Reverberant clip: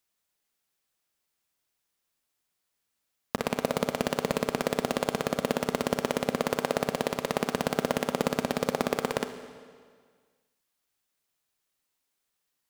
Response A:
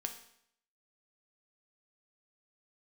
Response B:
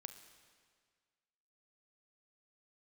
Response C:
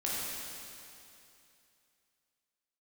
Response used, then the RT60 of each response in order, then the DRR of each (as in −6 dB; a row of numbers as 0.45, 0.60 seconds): B; 0.70, 1.8, 2.7 seconds; 4.5, 8.5, −7.0 decibels